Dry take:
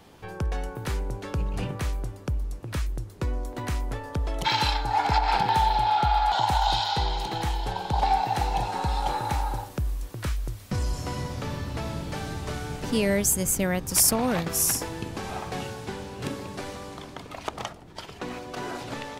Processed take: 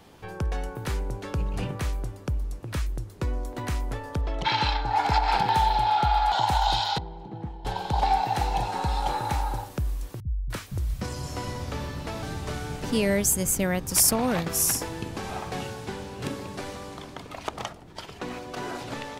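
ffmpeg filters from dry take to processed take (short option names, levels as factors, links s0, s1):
-filter_complex "[0:a]asettb=1/sr,asplit=3[s0][s1][s2];[s0]atrim=end=4.214[s3];[s1]atrim=start=4.21:end=4.96,asetpts=PTS-STARTPTS,afade=t=in:d=0.004:c=qsin,afade=t=out:st=0.746:d=0.004:c=qsin,lowpass=4400[s4];[s2]atrim=start=4.956[s5];[s3][s4]acrossfade=d=0.004:c1=hsin:c2=qsin[s6];[s6][s5]acrossfade=d=0.004:c1=qsin:c2=hsin,asettb=1/sr,asplit=3[s7][s8][s9];[s7]atrim=end=6.984[s10];[s8]atrim=start=6.98:end=7.65,asetpts=PTS-STARTPTS,afade=t=in:d=0.004:c=qsin,afade=t=out:st=0.666:d=0.004:c=qsin,bandpass=f=190:t=q:w=1.1[s11];[s9]atrim=start=7.646[s12];[s10][s11]acrossfade=d=0.004:c1=hsin:c2=qsin[s13];[s13][s12]acrossfade=d=0.004:c1=qsin:c2=hsin,asettb=1/sr,asplit=3[s14][s15][s16];[s14]atrim=end=10.204[s17];[s15]atrim=start=10.2:end=12.23,asetpts=PTS-STARTPTS,afade=t=in:d=0.004:c=qsin,afade=t=out:st=2.026:d=0.004:c=qsin,acrossover=split=160[s18][s19];[s19]adelay=300[s20];[s18][s20]amix=inputs=2:normalize=0,atrim=end_sample=89523[s21];[s16]atrim=start=12.226[s22];[s17][s21]acrossfade=d=0.004:c1=hsin:c2=qsin[s23];[s23][s22]acrossfade=d=0.004:c1=qsin:c2=hsin"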